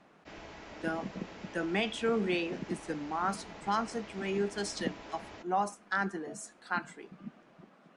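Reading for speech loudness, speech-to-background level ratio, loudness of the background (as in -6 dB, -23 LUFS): -35.0 LUFS, 13.5 dB, -48.5 LUFS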